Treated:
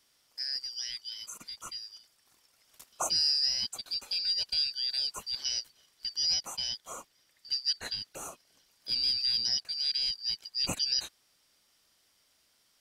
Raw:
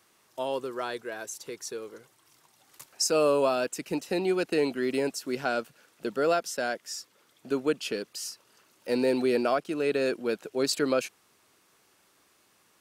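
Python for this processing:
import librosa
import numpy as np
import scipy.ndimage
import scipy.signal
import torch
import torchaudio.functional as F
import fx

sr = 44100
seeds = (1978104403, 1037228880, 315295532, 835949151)

y = fx.band_shuffle(x, sr, order='4321')
y = y * 10.0 ** (-4.5 / 20.0)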